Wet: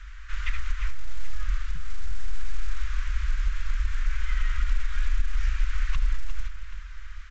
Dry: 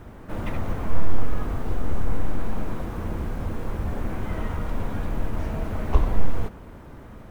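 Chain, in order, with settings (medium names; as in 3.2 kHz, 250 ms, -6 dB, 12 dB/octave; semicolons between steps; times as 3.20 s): octave divider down 2 oct, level -5 dB; inverse Chebyshev band-stop 100–800 Hz, stop band 40 dB; 1.75–2.45 s: peaking EQ 150 Hz +13.5 dB 0.26 oct; peak limiter -16 dBFS, peak gain reduction 10 dB; compression 16:1, threshold -24 dBFS, peak gain reduction 7.5 dB; multi-tap echo 350/777 ms -11.5/-18.5 dB; trim +6.5 dB; A-law 128 kbps 16 kHz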